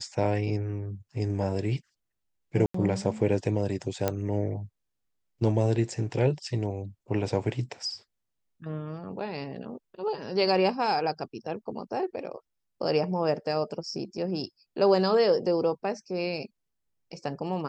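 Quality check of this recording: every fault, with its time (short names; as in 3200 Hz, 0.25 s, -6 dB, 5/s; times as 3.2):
2.66–2.74 gap 84 ms
4.08 pop -11 dBFS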